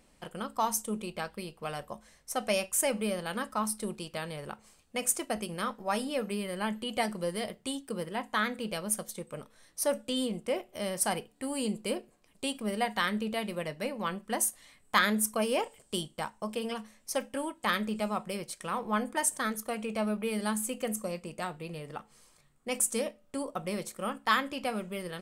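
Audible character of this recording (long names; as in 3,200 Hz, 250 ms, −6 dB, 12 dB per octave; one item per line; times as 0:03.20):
background noise floor −64 dBFS
spectral slope −3.5 dB per octave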